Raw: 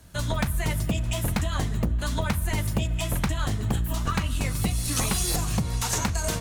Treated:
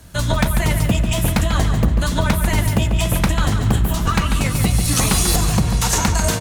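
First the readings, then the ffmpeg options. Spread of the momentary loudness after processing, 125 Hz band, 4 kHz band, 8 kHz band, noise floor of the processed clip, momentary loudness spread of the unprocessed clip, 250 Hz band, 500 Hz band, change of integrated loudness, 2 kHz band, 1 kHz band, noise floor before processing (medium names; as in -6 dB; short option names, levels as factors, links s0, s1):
3 LU, +9.0 dB, +8.5 dB, +8.5 dB, -22 dBFS, 3 LU, +9.5 dB, +9.0 dB, +9.0 dB, +9.0 dB, +9.0 dB, -30 dBFS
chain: -filter_complex "[0:a]asplit=2[s0][s1];[s1]adelay=143,lowpass=f=4500:p=1,volume=0.473,asplit=2[s2][s3];[s3]adelay=143,lowpass=f=4500:p=1,volume=0.5,asplit=2[s4][s5];[s5]adelay=143,lowpass=f=4500:p=1,volume=0.5,asplit=2[s6][s7];[s7]adelay=143,lowpass=f=4500:p=1,volume=0.5,asplit=2[s8][s9];[s9]adelay=143,lowpass=f=4500:p=1,volume=0.5,asplit=2[s10][s11];[s11]adelay=143,lowpass=f=4500:p=1,volume=0.5[s12];[s0][s2][s4][s6][s8][s10][s12]amix=inputs=7:normalize=0,volume=2.51"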